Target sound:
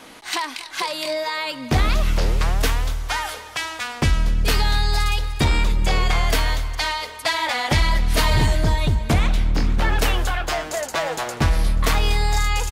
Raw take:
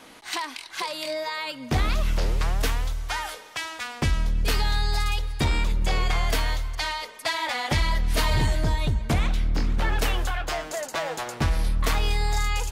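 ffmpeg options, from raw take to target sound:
-af "aecho=1:1:242|484|726|968|1210:0.126|0.0718|0.0409|0.0233|0.0133,volume=5dB"

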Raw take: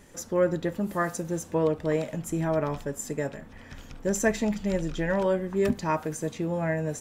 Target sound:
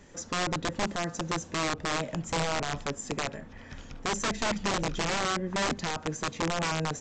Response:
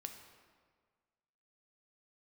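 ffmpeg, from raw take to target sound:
-filter_complex "[0:a]acrossover=split=390[a][b];[b]acompressor=threshold=-31dB:ratio=8[c];[a][c]amix=inputs=2:normalize=0,aresample=16000,aeval=exprs='(mod(14.1*val(0)+1,2)-1)/14.1':c=same,aresample=44100"

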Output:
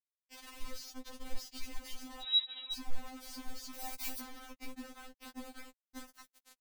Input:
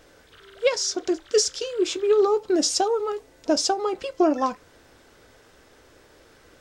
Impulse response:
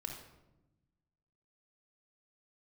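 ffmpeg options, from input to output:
-filter_complex "[0:a]asplit=2[a][b];[b]adelay=588,lowpass=f=2.6k:p=1,volume=-10dB,asplit=2[c][d];[d]adelay=588,lowpass=f=2.6k:p=1,volume=0.31,asplit=2[e][f];[f]adelay=588,lowpass=f=2.6k:p=1,volume=0.31[g];[a][c][e][g]amix=inputs=4:normalize=0,asoftclip=type=hard:threshold=-18.5dB,asettb=1/sr,asplit=3[h][i][j];[h]atrim=end=0.664[k];[i]atrim=start=0.66:end=1.42,asetpts=PTS-STARTPTS,afade=t=in:d=0.004:c=qsin,afade=t=out:st=0.756:d=0.004:c=qsin,tiltshelf=f=1.1k:g=4.5[l];[j]atrim=start=1.416[m];[k][l]acrossfade=d=0.004:c1=hsin:c2=qsin[n];[n][m]acrossfade=d=0.004:c1=qsin:c2=hsin,alimiter=limit=-23dB:level=0:latency=1:release=18,acompressor=threshold=-39dB:ratio=12,afreqshift=-460,acrusher=bits=6:mix=0:aa=0.000001,acrossover=split=180[o][p];[p]acompressor=threshold=-51dB:ratio=6[q];[o][q]amix=inputs=2:normalize=0,asettb=1/sr,asplit=3[r][s][t];[r]atrim=end=2.224[u];[s]atrim=start=2.22:end=2.73,asetpts=PTS-STARTPTS,afade=t=in:d=0.004:c=qsin,afade=t=out:st=0.506:d=0.004:c=qsin,lowpass=f=3.3k:t=q:w=0.5098,lowpass=f=3.3k:t=q:w=0.6013,lowpass=f=3.3k:t=q:w=0.9,lowpass=f=3.3k:t=q:w=2.563,afreqshift=-3900[v];[t]atrim=start=2.726[w];[u][v]acrossfade=d=0.004:c1=hsin:c2=qsin[x];[x][w]acrossfade=d=0.004:c1=qsin:c2=hsin,asettb=1/sr,asplit=3[y][z][aa];[y]atrim=end=3.744[ab];[z]atrim=start=3.74:end=4.2,asetpts=PTS-STARTPTS,afade=t=in:d=0.004:c=qsin,afade=t=out:st=0.456:d=0.004:c=qsin,aemphasis=mode=production:type=75kf[ac];[aa]atrim=start=4.196[ad];[ab][ac]acrossfade=d=0.004:c1=hsin:c2=qsin[ae];[ae][ad]acrossfade=d=0.004:c1=qsin:c2=hsin,afftfilt=real='re*3.46*eq(mod(b,12),0)':imag='im*3.46*eq(mod(b,12),0)':win_size=2048:overlap=0.75,volume=7dB"

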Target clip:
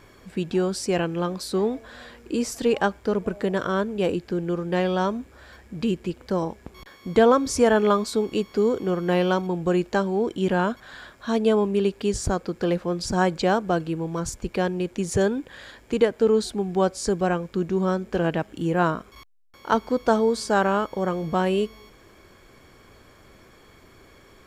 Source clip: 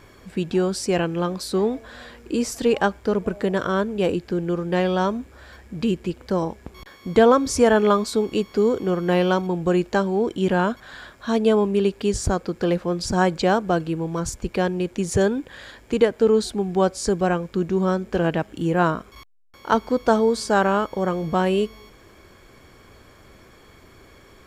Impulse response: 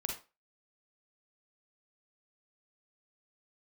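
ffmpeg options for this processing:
-af "equalizer=f=68:w=1.3:g=-2.5,volume=-2dB"

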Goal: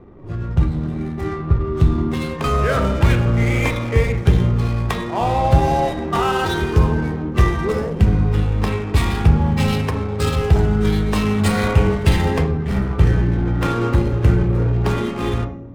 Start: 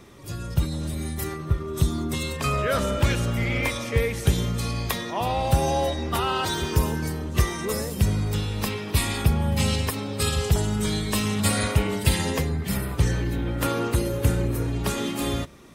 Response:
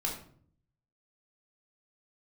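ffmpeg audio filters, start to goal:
-filter_complex "[0:a]adynamicsmooth=sensitivity=7:basefreq=620,bandreject=f=277.4:t=h:w=4,bandreject=f=554.8:t=h:w=4,bandreject=f=832.2:t=h:w=4,bandreject=f=1.1096k:t=h:w=4,bandreject=f=1.387k:t=h:w=4,bandreject=f=1.6644k:t=h:w=4,bandreject=f=1.9418k:t=h:w=4,bandreject=f=2.2192k:t=h:w=4,bandreject=f=2.4966k:t=h:w=4,bandreject=f=2.774k:t=h:w=4,bandreject=f=3.0514k:t=h:w=4,bandreject=f=3.3288k:t=h:w=4,bandreject=f=3.6062k:t=h:w=4,bandreject=f=3.8836k:t=h:w=4,bandreject=f=4.161k:t=h:w=4,bandreject=f=4.4384k:t=h:w=4,bandreject=f=4.7158k:t=h:w=4,bandreject=f=4.9932k:t=h:w=4,bandreject=f=5.2706k:t=h:w=4,bandreject=f=5.548k:t=h:w=4,bandreject=f=5.8254k:t=h:w=4,bandreject=f=6.1028k:t=h:w=4,bandreject=f=6.3802k:t=h:w=4,bandreject=f=6.6576k:t=h:w=4,bandreject=f=6.935k:t=h:w=4,bandreject=f=7.2124k:t=h:w=4,asplit=2[a][b];[1:a]atrim=start_sample=2205,lowpass=2.6k[c];[b][c]afir=irnorm=-1:irlink=0,volume=-4.5dB[d];[a][d]amix=inputs=2:normalize=0,volume=2dB"

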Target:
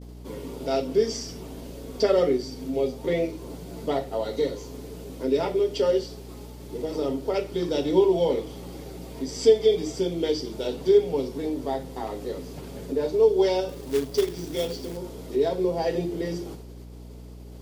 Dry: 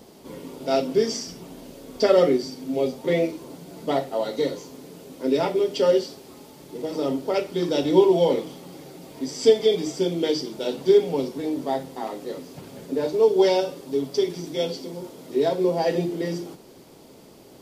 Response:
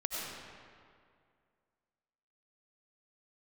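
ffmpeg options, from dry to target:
-filter_complex "[0:a]asplit=2[a][b];[b]acompressor=threshold=-32dB:ratio=6,volume=0.5dB[c];[a][c]amix=inputs=2:normalize=0,agate=range=-33dB:threshold=-37dB:ratio=3:detection=peak,equalizer=f=430:t=o:w=0.24:g=5,asettb=1/sr,asplit=3[d][e][f];[d]atrim=end=13.694[g];[e]atrim=start=13.69:end=14.97,asetpts=PTS-STARTPTS,afade=t=in:d=0.004:c=qsin,afade=t=out:st=1.276:d=0.004:c=qsin,acrusher=bits=3:mode=log:mix=0:aa=0.000001[h];[f]atrim=start=14.966[i];[g][h]acrossfade=d=0.004:c1=hsin:c2=qsin[j];[j][i]acrossfade=d=0.004:c1=qsin:c2=hsin,aeval=exprs='val(0)+0.0178*(sin(2*PI*60*n/s)+sin(2*PI*2*60*n/s)/2+sin(2*PI*3*60*n/s)/3+sin(2*PI*4*60*n/s)/4+sin(2*PI*5*60*n/s)/5)':c=same,volume=-6dB"

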